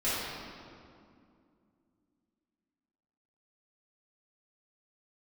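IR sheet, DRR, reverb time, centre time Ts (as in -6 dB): -14.0 dB, 2.4 s, 143 ms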